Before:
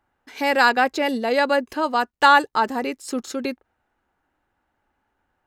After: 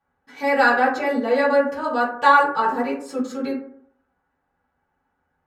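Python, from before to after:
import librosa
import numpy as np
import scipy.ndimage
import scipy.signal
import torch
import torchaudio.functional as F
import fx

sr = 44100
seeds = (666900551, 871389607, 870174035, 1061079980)

y = fx.high_shelf(x, sr, hz=7500.0, db=-4.5)
y = fx.rev_fdn(y, sr, rt60_s=0.64, lf_ratio=0.95, hf_ratio=0.35, size_ms=36.0, drr_db=-10.0)
y = y * librosa.db_to_amplitude(-11.0)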